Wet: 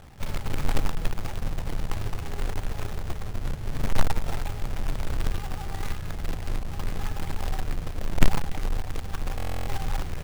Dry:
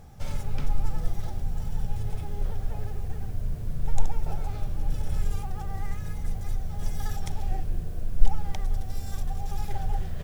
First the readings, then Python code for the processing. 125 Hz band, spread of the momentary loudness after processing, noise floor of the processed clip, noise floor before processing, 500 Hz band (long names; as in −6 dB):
+0.5 dB, 6 LU, −35 dBFS, −35 dBFS, +6.0 dB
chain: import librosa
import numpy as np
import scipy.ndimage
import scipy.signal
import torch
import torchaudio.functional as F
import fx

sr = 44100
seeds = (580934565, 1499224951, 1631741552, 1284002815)

y = scipy.signal.sosfilt(scipy.signal.butter(4, 3000.0, 'lowpass', fs=sr, output='sos'), x)
y = fx.quant_companded(y, sr, bits=4)
y = fx.buffer_glitch(y, sr, at_s=(9.37,), block=1024, repeats=12)
y = y * librosa.db_to_amplitude(-1.0)